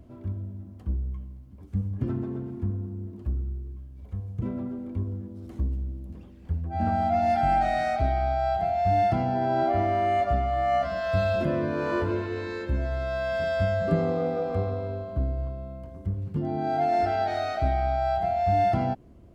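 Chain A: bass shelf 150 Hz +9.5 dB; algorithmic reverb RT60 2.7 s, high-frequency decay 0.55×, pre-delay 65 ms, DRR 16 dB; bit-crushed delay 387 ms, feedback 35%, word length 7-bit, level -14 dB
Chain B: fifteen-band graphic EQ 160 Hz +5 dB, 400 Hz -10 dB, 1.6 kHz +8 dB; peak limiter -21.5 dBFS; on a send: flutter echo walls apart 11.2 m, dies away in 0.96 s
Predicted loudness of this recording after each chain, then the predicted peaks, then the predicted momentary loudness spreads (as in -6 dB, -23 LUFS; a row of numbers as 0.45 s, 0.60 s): -24.5 LUFS, -30.0 LUFS; -8.0 dBFS, -16.5 dBFS; 9 LU, 10 LU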